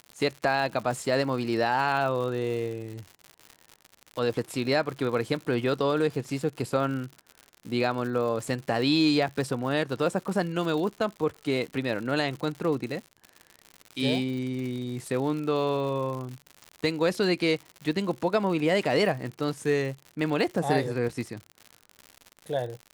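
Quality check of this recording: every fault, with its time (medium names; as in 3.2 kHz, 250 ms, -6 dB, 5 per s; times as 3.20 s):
crackle 110 per s -34 dBFS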